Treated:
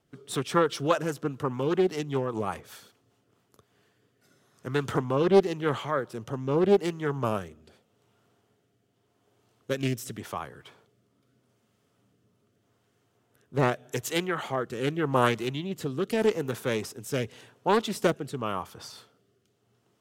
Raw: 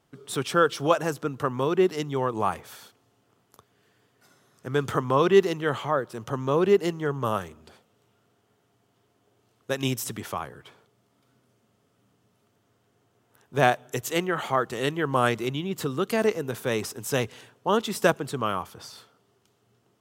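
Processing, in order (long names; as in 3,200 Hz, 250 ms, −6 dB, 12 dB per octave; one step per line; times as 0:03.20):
rotating-speaker cabinet horn 5 Hz, later 0.85 Hz, at 0:03.05
highs frequency-modulated by the lows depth 0.37 ms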